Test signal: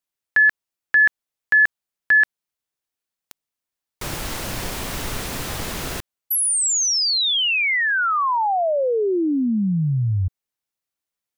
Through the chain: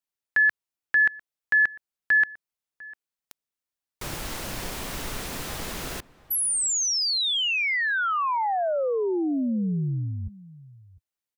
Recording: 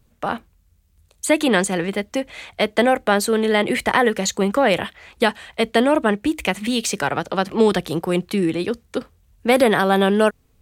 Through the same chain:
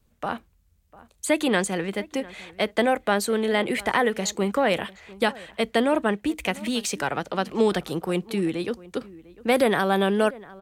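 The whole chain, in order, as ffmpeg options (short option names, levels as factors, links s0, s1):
-filter_complex "[0:a]adynamicequalizer=threshold=0.00562:dfrequency=100:dqfactor=2.5:tfrequency=100:tqfactor=2.5:attack=5:release=100:ratio=0.375:range=3.5:mode=cutabove:tftype=bell,asplit=2[s0][s1];[s1]adelay=699.7,volume=0.1,highshelf=f=4000:g=-15.7[s2];[s0][s2]amix=inputs=2:normalize=0,volume=0.562"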